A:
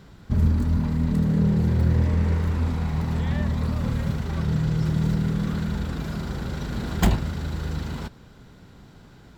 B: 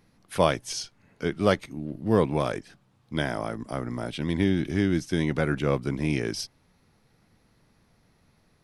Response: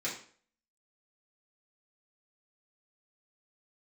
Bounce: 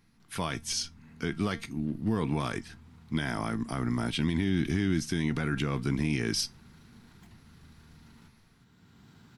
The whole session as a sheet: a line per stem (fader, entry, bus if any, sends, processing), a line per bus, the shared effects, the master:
0.0 dB, 0.20 s, no send, HPF 92 Hz; compressor 2:1, threshold -42 dBFS, peak gain reduction 14 dB; limiter -31 dBFS, peak gain reduction 8.5 dB; auto duck -10 dB, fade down 0.25 s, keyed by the second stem
+2.5 dB, 0.00 s, no send, AGC gain up to 7 dB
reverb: off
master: bell 550 Hz -12 dB 0.85 oct; resonator 230 Hz, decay 0.18 s, harmonics all, mix 50%; limiter -18.5 dBFS, peak gain reduction 10.5 dB

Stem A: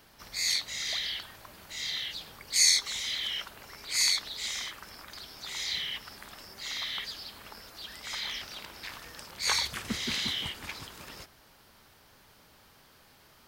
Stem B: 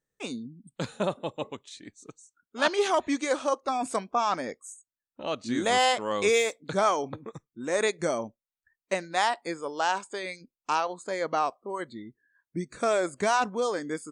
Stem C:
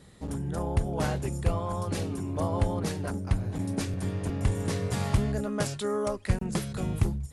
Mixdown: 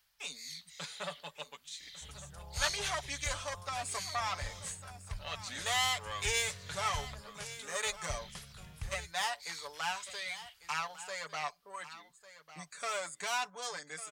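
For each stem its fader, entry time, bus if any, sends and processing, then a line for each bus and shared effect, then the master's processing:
-10.0 dB, 0.00 s, no send, no echo send, auto duck -6 dB, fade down 0.30 s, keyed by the second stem
+1.0 dB, 0.00 s, no send, echo send -15 dB, one diode to ground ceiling -25 dBFS; elliptic high-pass 160 Hz; comb 6.9 ms, depth 68%
-6.0 dB, 1.80 s, no send, no echo send, high shelf 8200 Hz -8.5 dB; de-hum 51.61 Hz, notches 2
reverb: off
echo: echo 1.15 s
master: passive tone stack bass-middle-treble 10-0-10

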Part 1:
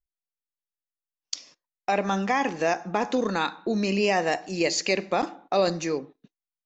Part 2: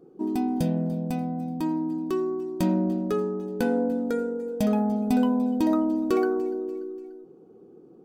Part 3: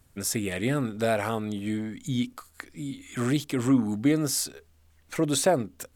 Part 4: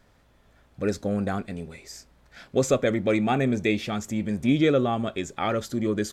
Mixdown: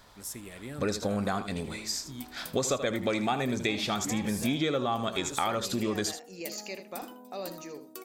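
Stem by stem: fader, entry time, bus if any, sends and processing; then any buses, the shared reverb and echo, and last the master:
-16.0 dB, 1.80 s, no send, echo send -11.5 dB, dry
-18.5 dB, 1.85 s, no send, echo send -13.5 dB, tilt +4 dB/oct
-15.0 dB, 0.00 s, no send, echo send -21.5 dB, dry
0.0 dB, 0.00 s, no send, echo send -12.5 dB, graphic EQ 1000/4000/8000 Hz +10/+10/+3 dB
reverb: off
echo: echo 78 ms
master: high shelf 8500 Hz +10.5 dB; compressor 4:1, threshold -27 dBFS, peak gain reduction 12 dB

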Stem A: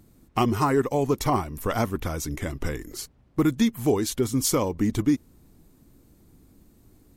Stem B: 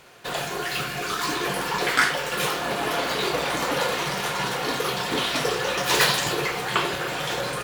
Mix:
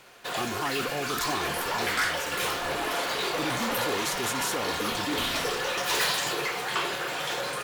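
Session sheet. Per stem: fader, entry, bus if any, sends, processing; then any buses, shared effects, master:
-7.0 dB, 0.00 s, no send, sustainer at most 31 dB/s
-1.5 dB, 0.00 s, no send, dry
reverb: off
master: low shelf 230 Hz -11.5 dB; soft clip -21 dBFS, distortion -14 dB

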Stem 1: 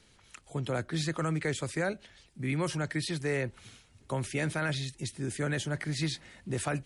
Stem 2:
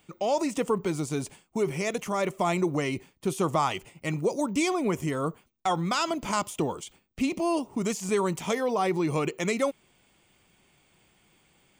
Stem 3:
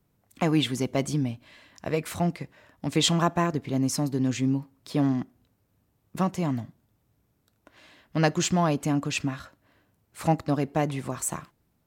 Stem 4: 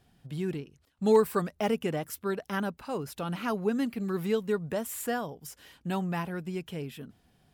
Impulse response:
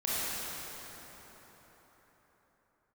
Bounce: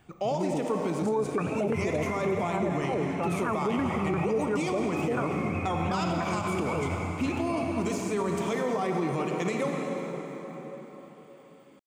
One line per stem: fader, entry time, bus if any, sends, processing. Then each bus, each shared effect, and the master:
-6.5 dB, 0.80 s, send -4 dB, spectrum mirrored in octaves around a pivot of 580 Hz
-3.5 dB, 0.00 s, send -8.5 dB, HPF 93 Hz 24 dB/oct; high shelf 4100 Hz -6 dB
off
+2.5 dB, 0.00 s, no send, LFO low-pass saw down 2.9 Hz 360–1600 Hz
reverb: on, RT60 4.8 s, pre-delay 23 ms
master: limiter -20 dBFS, peak gain reduction 14 dB

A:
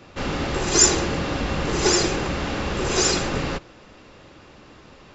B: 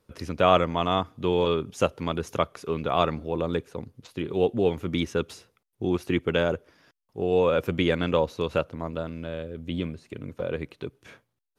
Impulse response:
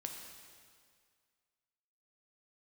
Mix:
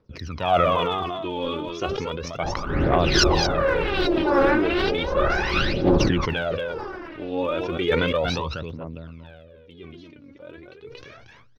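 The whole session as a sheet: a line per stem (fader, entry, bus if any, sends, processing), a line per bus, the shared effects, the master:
-3.5 dB, 2.40 s, no send, echo send -13.5 dB, tremolo 2.5 Hz, depth 78%; LFO low-pass saw up 1.2 Hz 560–4500 Hz; small resonant body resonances 360/560/1500/3900 Hz, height 7 dB
8.27 s -5.5 dB -> 8.58 s -15.5 dB, 0.00 s, no send, echo send -10.5 dB, dry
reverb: off
echo: echo 0.232 s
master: steep low-pass 6000 Hz 72 dB/oct; phaser 0.34 Hz, delay 3.7 ms, feedback 75%; sustainer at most 23 dB/s

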